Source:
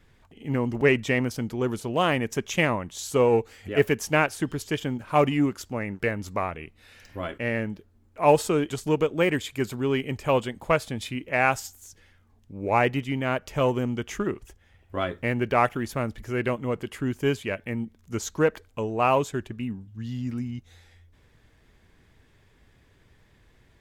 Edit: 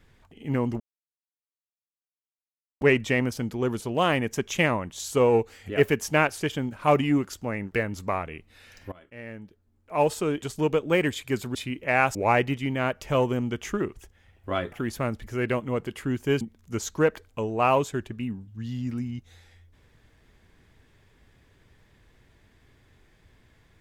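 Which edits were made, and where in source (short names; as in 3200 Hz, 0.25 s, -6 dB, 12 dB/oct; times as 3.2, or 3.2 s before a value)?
0.8 insert silence 2.01 s
4.39–4.68 cut
7.2–9.15 fade in, from -23 dB
9.83–11 cut
11.6–12.61 cut
15.18–15.68 cut
17.37–17.81 cut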